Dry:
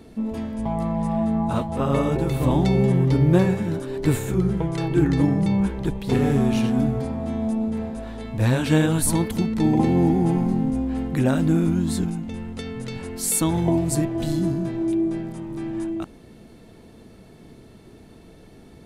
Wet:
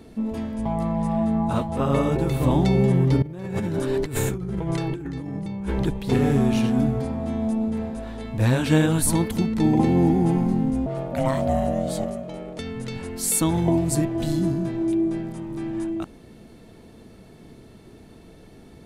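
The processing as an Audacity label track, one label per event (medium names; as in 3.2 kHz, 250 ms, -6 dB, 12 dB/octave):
3.220000	5.850000	compressor with a negative ratio -28 dBFS
10.860000	12.590000	ring modulator 400 Hz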